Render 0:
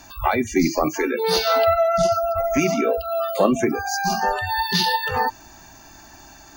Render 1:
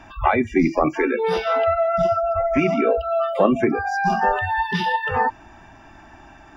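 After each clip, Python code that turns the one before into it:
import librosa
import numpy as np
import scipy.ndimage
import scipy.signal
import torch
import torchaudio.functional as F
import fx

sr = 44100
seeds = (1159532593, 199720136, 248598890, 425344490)

y = fx.rider(x, sr, range_db=10, speed_s=0.5)
y = scipy.signal.savgol_filter(y, 25, 4, mode='constant')
y = F.gain(torch.from_numpy(y), 1.0).numpy()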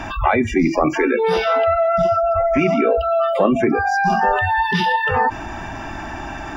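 y = fx.env_flatten(x, sr, amount_pct=50)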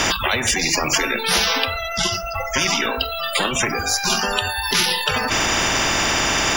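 y = fx.spectral_comp(x, sr, ratio=10.0)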